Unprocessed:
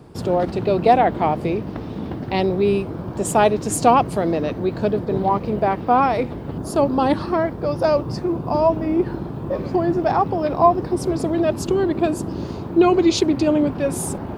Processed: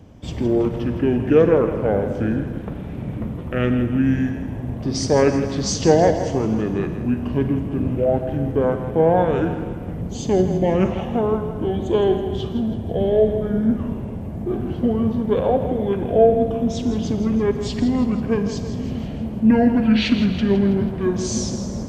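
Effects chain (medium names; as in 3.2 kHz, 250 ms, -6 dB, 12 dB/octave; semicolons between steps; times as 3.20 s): two-band feedback delay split 390 Hz, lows 614 ms, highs 107 ms, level -11 dB; wide varispeed 0.657×; Schroeder reverb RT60 1.3 s, combs from 33 ms, DRR 9.5 dB; trim -1 dB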